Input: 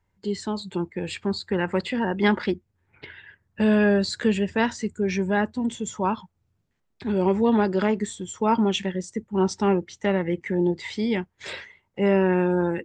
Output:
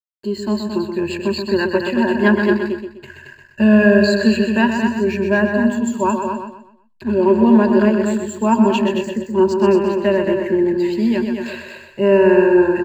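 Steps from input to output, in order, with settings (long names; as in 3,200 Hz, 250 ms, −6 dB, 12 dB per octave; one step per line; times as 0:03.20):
high-shelf EQ 5,500 Hz −9.5 dB
on a send: single-tap delay 223 ms −6 dB
on the sum: slack as between gear wheels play −46 dBFS
EQ curve with evenly spaced ripples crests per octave 1.4, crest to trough 15 dB
repeating echo 126 ms, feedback 34%, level −7 dB
level +2.5 dB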